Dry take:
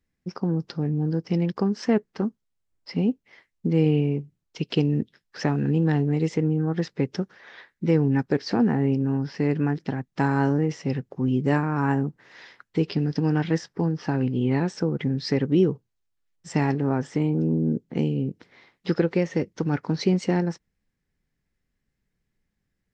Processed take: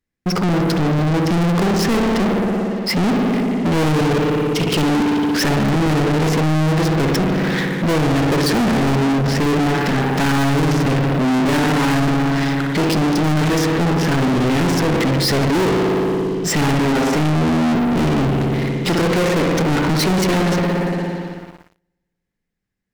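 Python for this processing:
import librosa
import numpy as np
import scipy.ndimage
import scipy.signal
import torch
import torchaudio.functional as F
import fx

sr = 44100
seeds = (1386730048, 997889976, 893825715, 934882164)

y = fx.low_shelf(x, sr, hz=130.0, db=-5.0)
y = fx.rev_spring(y, sr, rt60_s=1.9, pass_ms=(58,), chirp_ms=20, drr_db=4.0)
y = np.clip(10.0 ** (22.5 / 20.0) * y, -1.0, 1.0) / 10.0 ** (22.5 / 20.0)
y = fx.leveller(y, sr, passes=5)
y = y * 10.0 ** (7.5 / 20.0)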